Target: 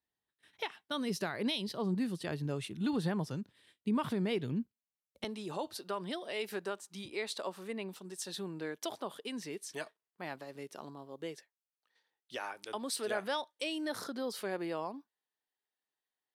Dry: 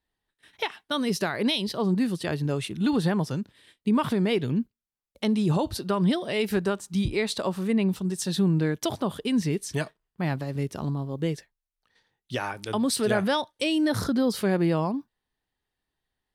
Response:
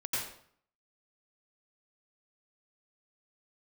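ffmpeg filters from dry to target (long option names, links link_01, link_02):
-af "asetnsamples=nb_out_samples=441:pad=0,asendcmd='5.24 highpass f 400',highpass=82,volume=-9dB"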